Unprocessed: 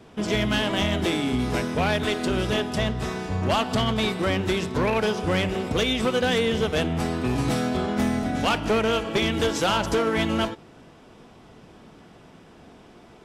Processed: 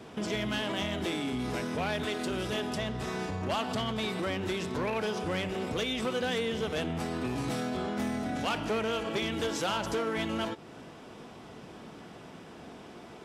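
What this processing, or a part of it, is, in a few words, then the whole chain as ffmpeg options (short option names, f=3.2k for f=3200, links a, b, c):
stacked limiters: -filter_complex "[0:a]alimiter=limit=-20.5dB:level=0:latency=1:release=21,alimiter=level_in=3.5dB:limit=-24dB:level=0:latency=1:release=192,volume=-3.5dB,highpass=f=120:p=1,asettb=1/sr,asplit=3[a][b][c];[a]atrim=end=2.194[d];[b]atrim=start=2.19:end=2.67,asetpts=PTS-STARTPTS,afade=t=in:d=0.004:c=qsin,afade=t=out:st=0.476:d=0.004:c=qsin,highshelf=f=7.6k:g=4.5[e];[c]atrim=start=2.666[f];[d][e]acrossfade=d=0.004:c1=hsin:c2=qsin[g];[g][f]acrossfade=d=0.004:c1=qsin:c2=hsin,volume=2.5dB"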